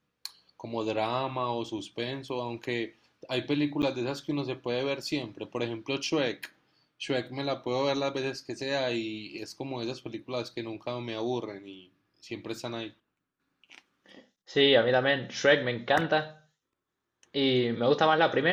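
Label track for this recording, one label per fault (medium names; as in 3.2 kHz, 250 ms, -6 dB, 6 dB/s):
3.820000	3.830000	dropout 8.5 ms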